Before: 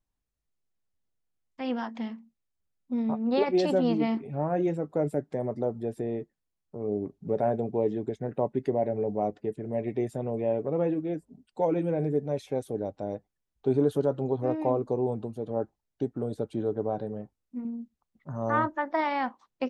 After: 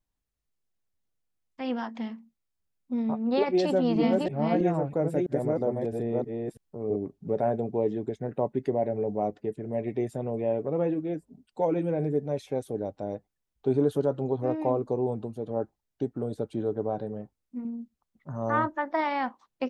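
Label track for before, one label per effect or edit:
3.630000	6.960000	chunks repeated in reverse 327 ms, level -1.5 dB

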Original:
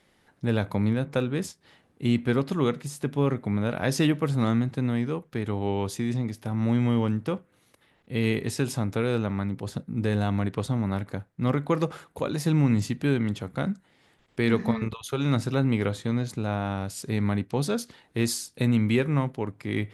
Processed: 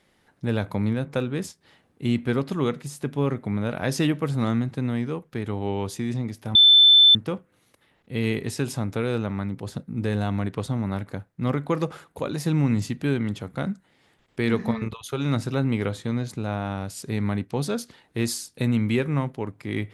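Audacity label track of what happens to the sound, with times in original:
6.550000	7.150000	bleep 3.53 kHz -10 dBFS

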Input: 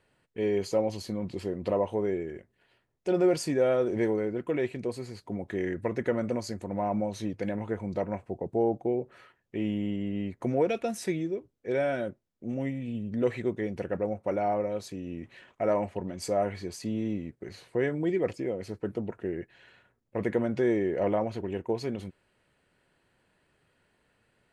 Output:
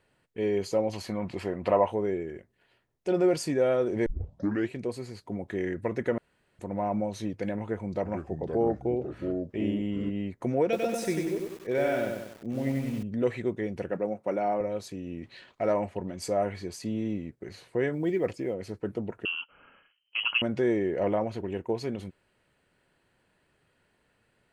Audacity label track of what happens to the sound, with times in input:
0.930000	1.920000	high-order bell 1.3 kHz +8.5 dB 2.4 oct
4.060000	4.060000	tape start 0.64 s
6.180000	6.590000	room tone
7.620000	10.100000	ever faster or slower copies 429 ms, each echo -4 st, echoes 2, each echo -6 dB
10.630000	13.030000	bit-crushed delay 96 ms, feedback 55%, word length 8-bit, level -3 dB
13.900000	14.610000	high-pass 140 Hz 24 dB/octave
15.220000	15.720000	peaking EQ 4.3 kHz +13 dB 0.53 oct
17.930000	18.540000	short-mantissa float mantissa of 6-bit
19.250000	20.420000	frequency inversion carrier 3.1 kHz

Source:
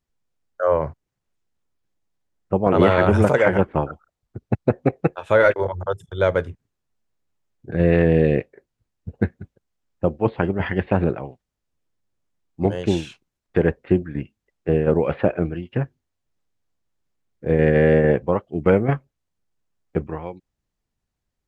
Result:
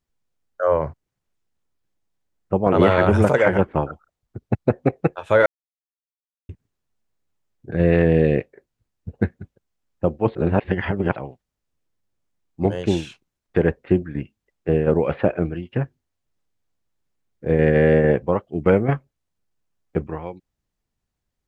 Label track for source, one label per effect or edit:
5.460000	6.490000	mute
10.350000	11.160000	reverse

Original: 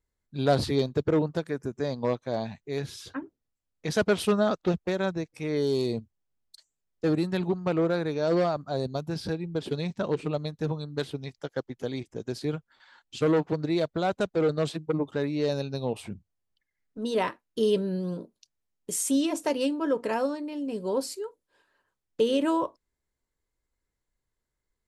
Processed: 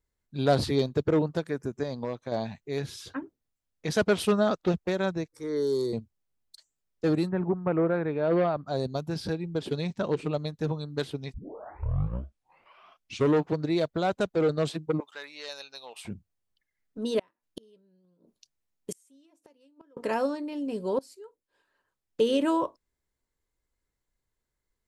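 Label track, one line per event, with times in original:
1.830000	2.320000	compression 3:1, threshold -29 dBFS
5.280000	5.930000	static phaser centre 700 Hz, stages 6
7.280000	8.650000	low-pass 1.6 kHz -> 3.5 kHz 24 dB/octave
11.340000	11.340000	tape start 2.09 s
15.000000	16.050000	high-pass 1.3 kHz
17.190000	19.970000	inverted gate shuts at -24 dBFS, range -35 dB
20.990000	22.220000	fade in, from -20 dB

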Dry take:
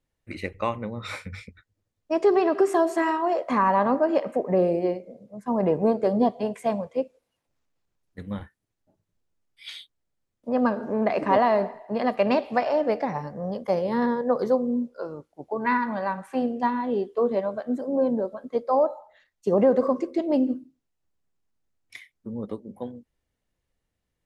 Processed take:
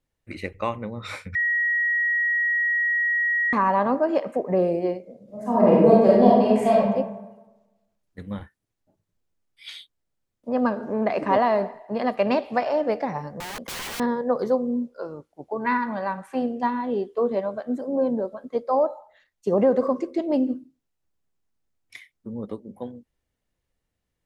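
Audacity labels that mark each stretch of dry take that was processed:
1.350000	3.530000	bleep 1.9 kHz -19.5 dBFS
5.230000	6.810000	reverb throw, RT60 1.1 s, DRR -6.5 dB
13.400000	14.000000	integer overflow gain 28.5 dB

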